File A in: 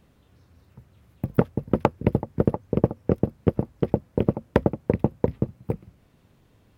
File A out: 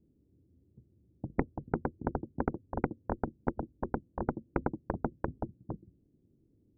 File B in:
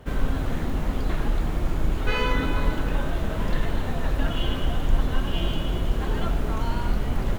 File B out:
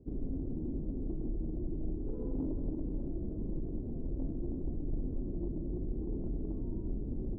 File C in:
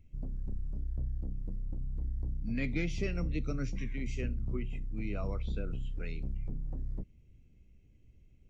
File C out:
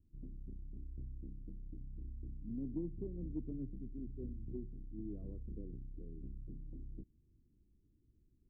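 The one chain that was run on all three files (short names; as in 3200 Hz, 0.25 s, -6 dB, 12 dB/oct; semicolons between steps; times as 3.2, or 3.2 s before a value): ladder low-pass 380 Hz, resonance 55%; added harmonics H 3 -11 dB, 7 -15 dB, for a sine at -8.5 dBFS; gain -2 dB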